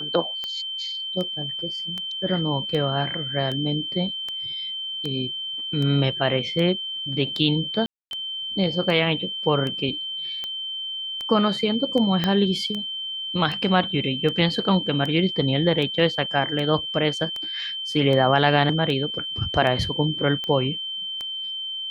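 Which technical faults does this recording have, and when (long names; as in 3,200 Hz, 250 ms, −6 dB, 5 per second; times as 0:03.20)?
scratch tick 78 rpm −17 dBFS
whistle 3,100 Hz −28 dBFS
0:07.86–0:08.11: drop-out 251 ms
0:12.24: click −9 dBFS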